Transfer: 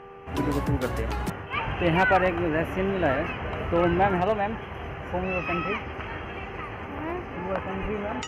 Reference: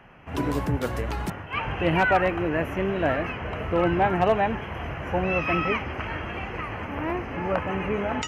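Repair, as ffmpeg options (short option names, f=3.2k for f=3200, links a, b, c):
-filter_complex "[0:a]bandreject=f=394.3:t=h:w=4,bandreject=f=788.6:t=h:w=4,bandreject=f=1.1829k:t=h:w=4,bandreject=f=480:w=30,asplit=3[a][b][c];[a]afade=t=out:st=7.81:d=0.02[d];[b]highpass=f=140:w=0.5412,highpass=f=140:w=1.3066,afade=t=in:st=7.81:d=0.02,afade=t=out:st=7.93:d=0.02[e];[c]afade=t=in:st=7.93:d=0.02[f];[d][e][f]amix=inputs=3:normalize=0,asetnsamples=n=441:p=0,asendcmd='4.2 volume volume 3.5dB',volume=0dB"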